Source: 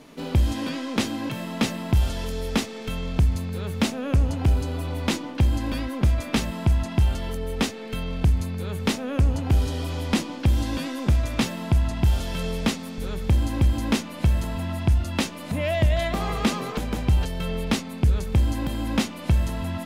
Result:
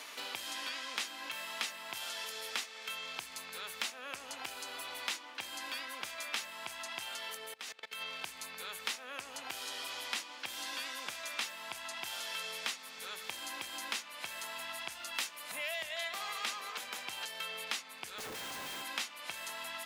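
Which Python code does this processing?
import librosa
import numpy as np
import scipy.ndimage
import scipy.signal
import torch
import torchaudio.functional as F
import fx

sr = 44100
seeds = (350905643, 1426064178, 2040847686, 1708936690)

y = scipy.signal.sosfilt(scipy.signal.butter(2, 1300.0, 'highpass', fs=sr, output='sos'), x)
y = fx.level_steps(y, sr, step_db=23, at=(7.46, 8.0), fade=0.02)
y = fx.high_shelf(y, sr, hz=8900.0, db=8.0, at=(15.14, 15.83))
y = fx.schmitt(y, sr, flips_db=-47.0, at=(18.18, 18.82))
y = fx.band_squash(y, sr, depth_pct=70)
y = y * librosa.db_to_amplitude(-4.0)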